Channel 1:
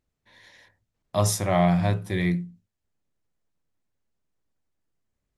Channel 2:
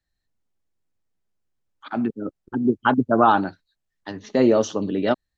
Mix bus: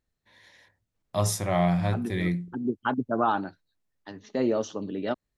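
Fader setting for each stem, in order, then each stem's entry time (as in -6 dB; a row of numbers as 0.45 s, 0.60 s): -3.0 dB, -8.5 dB; 0.00 s, 0.00 s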